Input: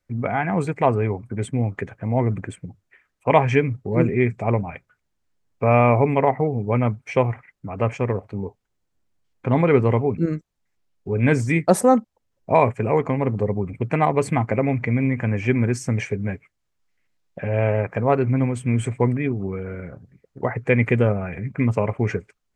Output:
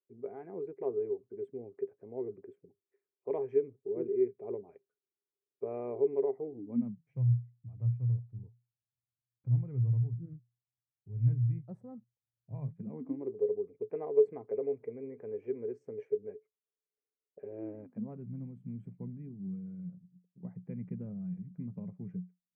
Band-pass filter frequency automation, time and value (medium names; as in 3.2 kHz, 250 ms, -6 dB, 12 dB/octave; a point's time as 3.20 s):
band-pass filter, Q 17
6.42 s 400 Hz
7.24 s 120 Hz
12.55 s 120 Hz
13.37 s 430 Hz
17.39 s 430 Hz
18.19 s 180 Hz